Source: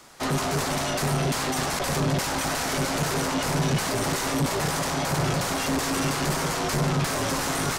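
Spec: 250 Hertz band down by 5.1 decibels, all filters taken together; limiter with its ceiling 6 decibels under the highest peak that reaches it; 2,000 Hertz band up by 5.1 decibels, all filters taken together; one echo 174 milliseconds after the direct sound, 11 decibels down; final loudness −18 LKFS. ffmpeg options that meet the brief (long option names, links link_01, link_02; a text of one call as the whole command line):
ffmpeg -i in.wav -af "equalizer=frequency=250:width_type=o:gain=-7.5,equalizer=frequency=2000:width_type=o:gain=6.5,alimiter=limit=-19.5dB:level=0:latency=1,aecho=1:1:174:0.282,volume=9dB" out.wav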